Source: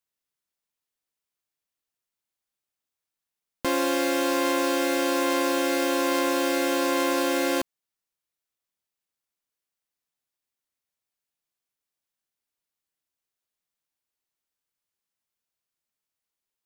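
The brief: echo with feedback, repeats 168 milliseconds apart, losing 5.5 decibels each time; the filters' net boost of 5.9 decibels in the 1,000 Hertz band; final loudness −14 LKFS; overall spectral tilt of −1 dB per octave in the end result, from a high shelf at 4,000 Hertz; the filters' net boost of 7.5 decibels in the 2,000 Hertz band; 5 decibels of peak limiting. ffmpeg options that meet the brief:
ffmpeg -i in.wav -af "equalizer=frequency=1000:width_type=o:gain=5,equalizer=frequency=2000:width_type=o:gain=6,highshelf=frequency=4000:gain=8,alimiter=limit=-10.5dB:level=0:latency=1,aecho=1:1:168|336|504|672|840|1008|1176:0.531|0.281|0.149|0.079|0.0419|0.0222|0.0118,volume=7dB" out.wav

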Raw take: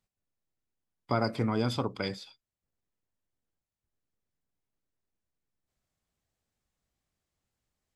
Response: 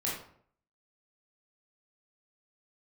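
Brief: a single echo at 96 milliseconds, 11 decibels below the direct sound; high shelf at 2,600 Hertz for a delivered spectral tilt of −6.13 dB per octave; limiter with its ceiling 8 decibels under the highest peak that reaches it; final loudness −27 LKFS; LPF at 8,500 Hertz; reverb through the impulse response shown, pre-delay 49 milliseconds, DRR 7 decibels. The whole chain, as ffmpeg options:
-filter_complex "[0:a]lowpass=8500,highshelf=frequency=2600:gain=-6,alimiter=limit=-21dB:level=0:latency=1,aecho=1:1:96:0.282,asplit=2[link_01][link_02];[1:a]atrim=start_sample=2205,adelay=49[link_03];[link_02][link_03]afir=irnorm=-1:irlink=0,volume=-12dB[link_04];[link_01][link_04]amix=inputs=2:normalize=0,volume=6.5dB"

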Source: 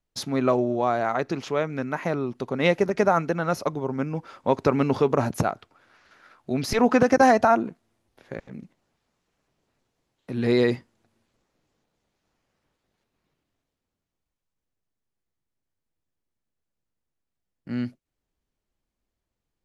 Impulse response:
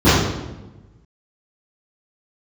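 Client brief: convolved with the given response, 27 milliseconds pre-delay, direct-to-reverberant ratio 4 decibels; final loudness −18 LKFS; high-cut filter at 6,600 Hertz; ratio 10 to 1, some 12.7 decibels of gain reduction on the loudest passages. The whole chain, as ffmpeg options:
-filter_complex "[0:a]lowpass=6600,acompressor=threshold=-26dB:ratio=10,asplit=2[link_01][link_02];[1:a]atrim=start_sample=2205,adelay=27[link_03];[link_02][link_03]afir=irnorm=-1:irlink=0,volume=-31.5dB[link_04];[link_01][link_04]amix=inputs=2:normalize=0,volume=10dB"

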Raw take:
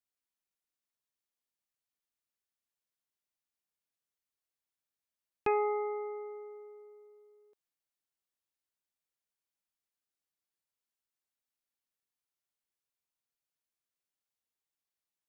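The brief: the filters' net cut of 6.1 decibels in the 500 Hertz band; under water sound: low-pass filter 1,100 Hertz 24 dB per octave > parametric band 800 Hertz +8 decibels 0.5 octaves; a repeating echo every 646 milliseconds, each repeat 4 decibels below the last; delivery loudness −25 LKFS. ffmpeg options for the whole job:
ffmpeg -i in.wav -af "lowpass=frequency=1100:width=0.5412,lowpass=frequency=1100:width=1.3066,equalizer=frequency=500:width_type=o:gain=-8.5,equalizer=frequency=800:width_type=o:width=0.5:gain=8,aecho=1:1:646|1292|1938|2584|3230|3876|4522|5168|5814:0.631|0.398|0.25|0.158|0.0994|0.0626|0.0394|0.0249|0.0157,volume=12dB" out.wav

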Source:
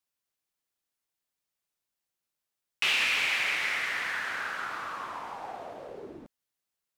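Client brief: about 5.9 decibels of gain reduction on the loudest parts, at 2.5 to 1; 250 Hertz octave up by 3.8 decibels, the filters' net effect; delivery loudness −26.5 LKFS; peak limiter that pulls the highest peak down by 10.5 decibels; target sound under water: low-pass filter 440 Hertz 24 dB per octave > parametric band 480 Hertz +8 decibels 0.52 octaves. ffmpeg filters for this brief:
ffmpeg -i in.wav -af "equalizer=frequency=250:width_type=o:gain=4,acompressor=threshold=-32dB:ratio=2.5,alimiter=level_in=1.5dB:limit=-24dB:level=0:latency=1,volume=-1.5dB,lowpass=frequency=440:width=0.5412,lowpass=frequency=440:width=1.3066,equalizer=frequency=480:width_type=o:width=0.52:gain=8,volume=22dB" out.wav

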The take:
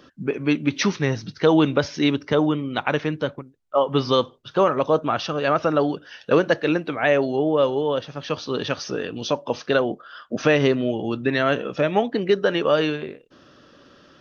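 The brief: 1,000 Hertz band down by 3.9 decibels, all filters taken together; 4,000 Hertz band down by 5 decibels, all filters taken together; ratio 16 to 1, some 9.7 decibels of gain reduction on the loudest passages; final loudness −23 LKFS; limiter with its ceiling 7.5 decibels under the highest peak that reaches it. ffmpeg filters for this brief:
ffmpeg -i in.wav -af "equalizer=frequency=1000:width_type=o:gain=-5,equalizer=frequency=4000:width_type=o:gain=-6.5,acompressor=threshold=-23dB:ratio=16,volume=7.5dB,alimiter=limit=-11dB:level=0:latency=1" out.wav

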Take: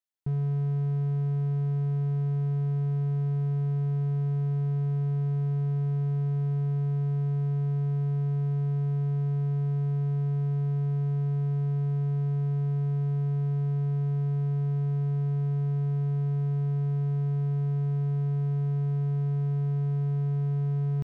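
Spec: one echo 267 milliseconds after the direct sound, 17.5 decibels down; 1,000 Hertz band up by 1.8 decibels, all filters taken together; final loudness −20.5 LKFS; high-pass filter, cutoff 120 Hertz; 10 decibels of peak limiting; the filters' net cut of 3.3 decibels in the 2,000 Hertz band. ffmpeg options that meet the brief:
ffmpeg -i in.wav -af "highpass=120,equalizer=frequency=1000:width_type=o:gain=4,equalizer=frequency=2000:width_type=o:gain=-6,alimiter=level_in=9.5dB:limit=-24dB:level=0:latency=1,volume=-9.5dB,aecho=1:1:267:0.133,volume=15.5dB" out.wav

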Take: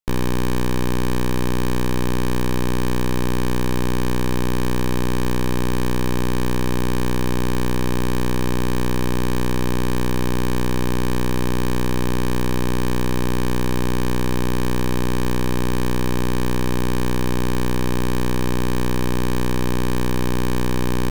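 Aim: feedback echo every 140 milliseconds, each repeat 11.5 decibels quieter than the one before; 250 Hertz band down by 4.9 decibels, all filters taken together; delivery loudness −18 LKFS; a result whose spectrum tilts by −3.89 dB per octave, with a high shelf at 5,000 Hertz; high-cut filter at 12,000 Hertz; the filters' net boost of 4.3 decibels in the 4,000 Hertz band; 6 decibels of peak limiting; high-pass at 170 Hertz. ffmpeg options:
ffmpeg -i in.wav -af "highpass=170,lowpass=12000,equalizer=frequency=250:width_type=o:gain=-5,equalizer=frequency=4000:width_type=o:gain=4,highshelf=frequency=5000:gain=3.5,alimiter=limit=-14dB:level=0:latency=1,aecho=1:1:140|280|420:0.266|0.0718|0.0194,volume=13.5dB" out.wav

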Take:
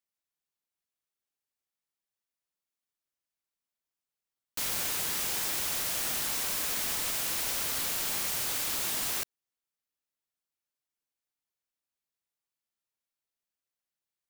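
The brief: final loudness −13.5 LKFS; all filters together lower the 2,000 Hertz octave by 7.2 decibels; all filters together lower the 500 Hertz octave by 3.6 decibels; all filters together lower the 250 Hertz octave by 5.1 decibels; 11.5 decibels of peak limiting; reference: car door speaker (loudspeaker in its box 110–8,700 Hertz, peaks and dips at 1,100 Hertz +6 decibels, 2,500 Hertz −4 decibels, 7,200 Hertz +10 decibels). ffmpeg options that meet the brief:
ffmpeg -i in.wav -af "equalizer=frequency=250:width_type=o:gain=-5.5,equalizer=frequency=500:width_type=o:gain=-3,equalizer=frequency=2000:width_type=o:gain=-8,alimiter=level_in=6.5dB:limit=-24dB:level=0:latency=1,volume=-6.5dB,highpass=110,equalizer=frequency=1100:width_type=q:width=4:gain=6,equalizer=frequency=2500:width_type=q:width=4:gain=-4,equalizer=frequency=7200:width_type=q:width=4:gain=10,lowpass=frequency=8700:width=0.5412,lowpass=frequency=8700:width=1.3066,volume=25dB" out.wav

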